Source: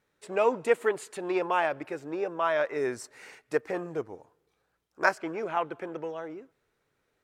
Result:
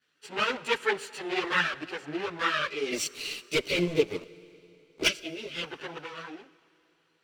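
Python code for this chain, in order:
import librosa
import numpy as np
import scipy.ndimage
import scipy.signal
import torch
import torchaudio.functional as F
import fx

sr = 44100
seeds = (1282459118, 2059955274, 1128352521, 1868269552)

y = fx.lower_of_two(x, sr, delay_ms=0.68)
y = fx.weighting(y, sr, curve='D')
y = fx.spec_box(y, sr, start_s=2.67, length_s=2.96, low_hz=680.0, high_hz=2000.0, gain_db=-19)
y = scipy.signal.sosfilt(scipy.signal.butter(2, 67.0, 'highpass', fs=sr, output='sos'), y)
y = fx.high_shelf(y, sr, hz=4700.0, db=-5.5)
y = fx.leveller(y, sr, passes=3, at=(2.91, 5.07))
y = fx.chorus_voices(y, sr, voices=6, hz=1.0, base_ms=16, depth_ms=4.3, mix_pct=70)
y = fx.rev_plate(y, sr, seeds[0], rt60_s=3.4, hf_ratio=0.9, predelay_ms=0, drr_db=19.0)
y = F.gain(torch.from_numpy(y), 2.0).numpy()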